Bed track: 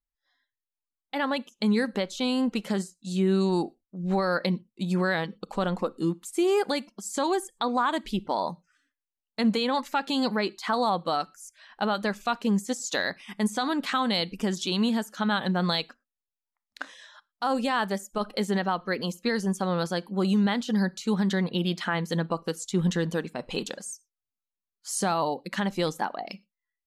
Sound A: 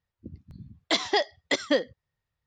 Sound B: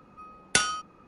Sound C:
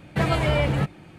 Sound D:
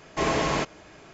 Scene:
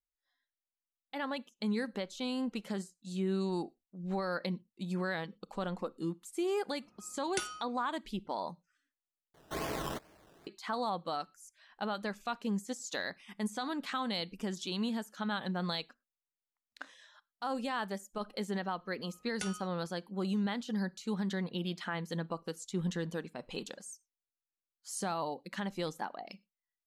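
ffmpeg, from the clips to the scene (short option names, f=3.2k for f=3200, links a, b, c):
-filter_complex "[2:a]asplit=2[a][b];[0:a]volume=-9.5dB[c];[4:a]acrusher=samples=16:mix=1:aa=0.000001:lfo=1:lforange=9.6:lforate=2.3[d];[c]asplit=2[e][f];[e]atrim=end=9.344[g];[d]atrim=end=1.13,asetpts=PTS-STARTPTS,volume=-12.5dB[h];[f]atrim=start=10.466[i];[a]atrim=end=1.07,asetpts=PTS-STARTPTS,volume=-14dB,afade=t=in:d=0.004:c=hsin,afade=t=out:st=1.066:d=0.004:c=hsin,adelay=300762S[j];[b]atrim=end=1.07,asetpts=PTS-STARTPTS,volume=-18dB,afade=t=in:d=0.004:c=hsin,afade=t=out:st=1.066:d=0.004:c=hsin,adelay=18860[k];[g][h]acrossfade=d=0.004:c1=hsin:c2=hsin[l];[l][i]acrossfade=d=0.004:c1=hsin:c2=hsin[m];[m][j][k]amix=inputs=3:normalize=0"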